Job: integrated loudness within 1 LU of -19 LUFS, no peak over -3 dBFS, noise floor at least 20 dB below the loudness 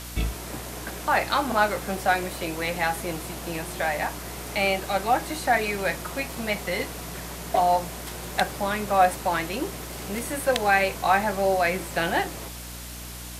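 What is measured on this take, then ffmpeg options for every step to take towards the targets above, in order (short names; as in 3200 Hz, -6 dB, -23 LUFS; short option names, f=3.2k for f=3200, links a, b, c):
hum 60 Hz; harmonics up to 300 Hz; hum level -39 dBFS; noise floor -38 dBFS; noise floor target -46 dBFS; loudness -26.0 LUFS; peak -5.0 dBFS; loudness target -19.0 LUFS
-> -af "bandreject=f=60:t=h:w=4,bandreject=f=120:t=h:w=4,bandreject=f=180:t=h:w=4,bandreject=f=240:t=h:w=4,bandreject=f=300:t=h:w=4"
-af "afftdn=nr=8:nf=-38"
-af "volume=7dB,alimiter=limit=-3dB:level=0:latency=1"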